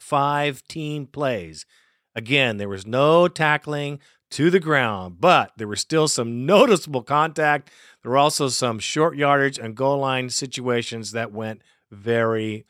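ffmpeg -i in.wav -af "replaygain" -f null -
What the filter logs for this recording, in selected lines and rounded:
track_gain = -0.2 dB
track_peak = 0.561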